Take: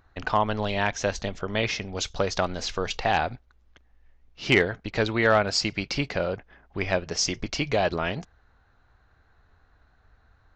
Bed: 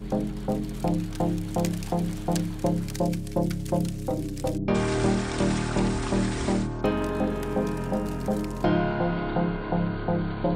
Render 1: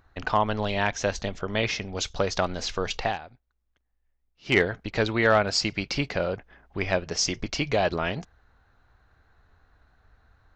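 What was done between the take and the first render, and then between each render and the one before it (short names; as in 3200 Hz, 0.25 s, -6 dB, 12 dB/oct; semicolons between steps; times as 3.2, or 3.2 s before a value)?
3.04–4.58 dip -16.5 dB, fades 0.14 s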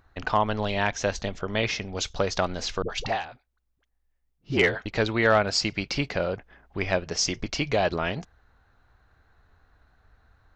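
2.82–4.86 dispersion highs, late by 73 ms, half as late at 440 Hz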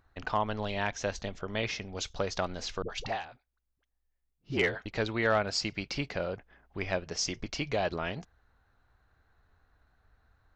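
gain -6.5 dB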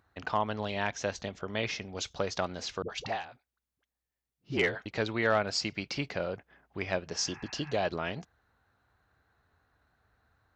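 HPF 86 Hz 12 dB/oct; 7.15–7.71 spectral repair 740–2700 Hz before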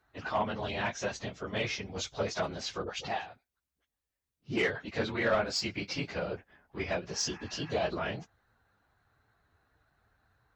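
phase scrambler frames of 50 ms; soft clip -19 dBFS, distortion -19 dB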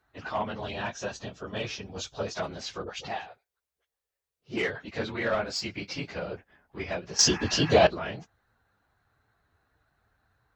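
0.73–2.35 notch 2100 Hz, Q 5.1; 3.27–4.54 resonant low shelf 350 Hz -7 dB, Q 3; 7.19–7.87 gain +12 dB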